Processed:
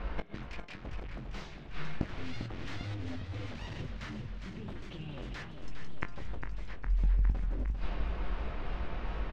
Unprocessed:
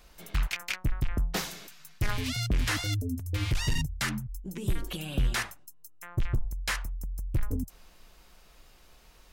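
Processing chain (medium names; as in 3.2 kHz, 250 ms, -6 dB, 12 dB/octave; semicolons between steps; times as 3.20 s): 6.64–7.30 s: gate -27 dBFS, range -14 dB; level-controlled noise filter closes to 2 kHz, open at -26 dBFS; in parallel at -9 dB: decimation with a swept rate 36×, swing 100% 4 Hz; on the sum: wavefolder -27 dBFS; inverted gate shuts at -37 dBFS, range -27 dB; distance through air 180 m; doubling 20 ms -9.5 dB; on a send: delay 444 ms -17.5 dB; on the sum: modulated delay 404 ms, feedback 71%, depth 155 cents, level -7.5 dB; trim +17.5 dB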